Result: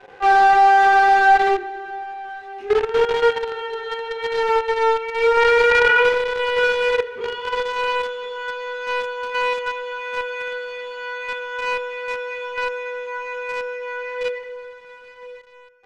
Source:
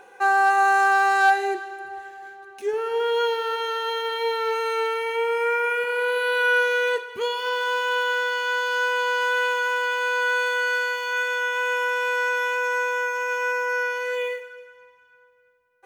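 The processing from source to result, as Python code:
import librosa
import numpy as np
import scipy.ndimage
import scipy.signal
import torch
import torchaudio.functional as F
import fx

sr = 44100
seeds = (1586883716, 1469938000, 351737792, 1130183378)

p1 = fx.highpass(x, sr, hz=550.0, slope=12, at=(2.12, 2.6))
p2 = p1 + fx.echo_feedback(p1, sr, ms=1030, feedback_pct=41, wet_db=-20.0, dry=0)
p3 = fx.room_shoebox(p2, sr, seeds[0], volume_m3=130.0, walls='mixed', distance_m=1.9)
p4 = fx.quant_companded(p3, sr, bits=2)
p5 = p3 + (p4 * librosa.db_to_amplitude(-6.0))
p6 = scipy.signal.sosfilt(scipy.signal.butter(2, 2800.0, 'lowpass', fs=sr, output='sos'), p5)
p7 = fx.env_flatten(p6, sr, amount_pct=100, at=(5.37, 6.09))
y = p7 * librosa.db_to_amplitude(-9.0)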